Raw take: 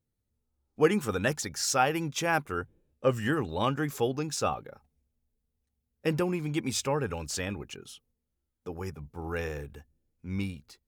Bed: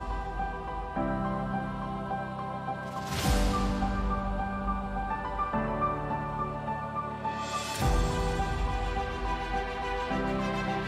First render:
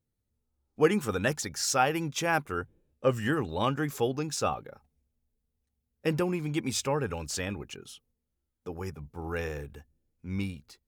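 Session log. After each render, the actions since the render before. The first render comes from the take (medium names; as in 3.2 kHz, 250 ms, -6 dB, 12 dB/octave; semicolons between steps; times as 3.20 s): no audible change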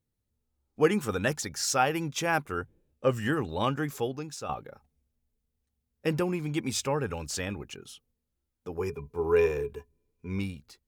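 3.76–4.49 s: fade out, to -10.5 dB; 8.77–10.39 s: small resonant body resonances 420/1000/2400 Hz, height 18 dB, ringing for 95 ms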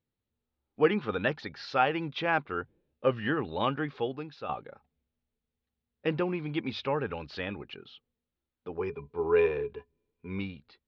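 steep low-pass 4.2 kHz 48 dB/octave; bass shelf 110 Hz -11 dB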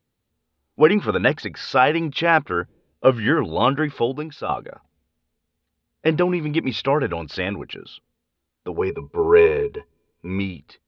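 trim +10.5 dB; peak limiter -3 dBFS, peak gain reduction 3 dB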